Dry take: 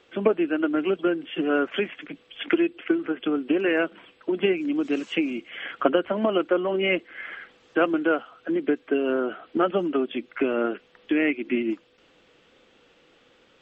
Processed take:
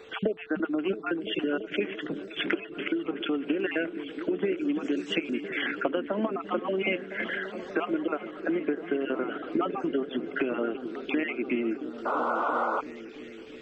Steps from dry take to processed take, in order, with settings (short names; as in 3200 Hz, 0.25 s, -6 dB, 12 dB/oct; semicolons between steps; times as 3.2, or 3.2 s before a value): random spectral dropouts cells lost 31%; compressor 4:1, threshold -36 dBFS, peak gain reduction 18 dB; whine 440 Hz -57 dBFS; on a send: repeats that get brighter 0.337 s, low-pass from 200 Hz, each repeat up 1 oct, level -6 dB; on the sum: painted sound noise, 12.05–12.81, 420–1500 Hz -36 dBFS; gain +8 dB